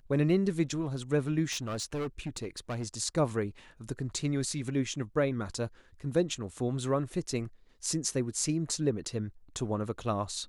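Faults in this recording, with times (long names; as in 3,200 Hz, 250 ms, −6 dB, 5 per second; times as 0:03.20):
0:01.51–0:02.88: clipping −30.5 dBFS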